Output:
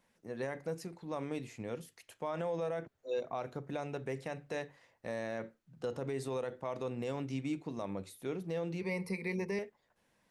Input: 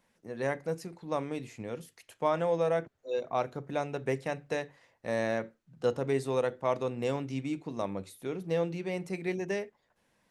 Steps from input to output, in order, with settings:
0:08.81–0:09.59: EQ curve with evenly spaced ripples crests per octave 0.89, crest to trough 16 dB
brickwall limiter −25.5 dBFS, peak gain reduction 9.5 dB
level −2 dB

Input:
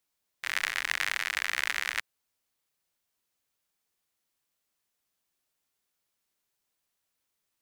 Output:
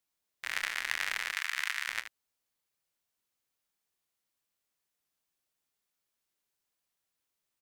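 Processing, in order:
0:01.32–0:01.88: high-pass filter 890 Hz 24 dB per octave
ambience of single reflections 25 ms −14.5 dB, 77 ms −11.5 dB
level −4 dB

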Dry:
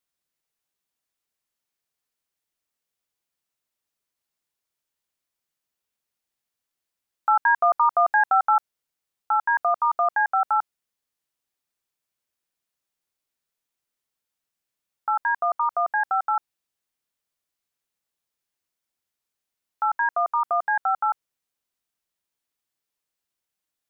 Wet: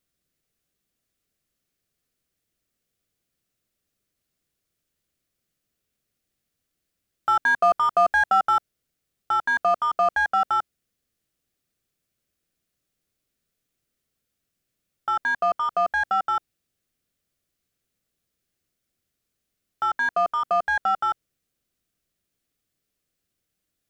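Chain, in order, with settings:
low-shelf EQ 430 Hz +12 dB
in parallel at −5.5 dB: soft clipping −25 dBFS, distortion −7 dB
on the sum: parametric band 920 Hz −12 dB 0.38 octaves

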